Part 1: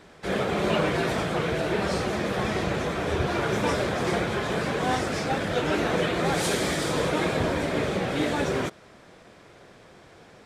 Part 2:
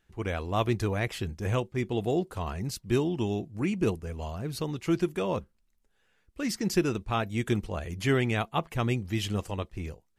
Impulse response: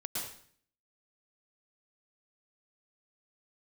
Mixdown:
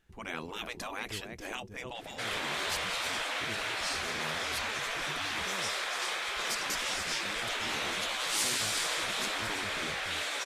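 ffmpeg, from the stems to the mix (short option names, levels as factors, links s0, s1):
-filter_complex "[0:a]highpass=1500,adelay=1950,volume=1.26[s0];[1:a]volume=1,asplit=2[s1][s2];[s2]volume=0.178,aecho=0:1:290:1[s3];[s0][s1][s3]amix=inputs=3:normalize=0,afftfilt=real='re*lt(hypot(re,im),0.0794)':imag='im*lt(hypot(re,im),0.0794)':win_size=1024:overlap=0.75"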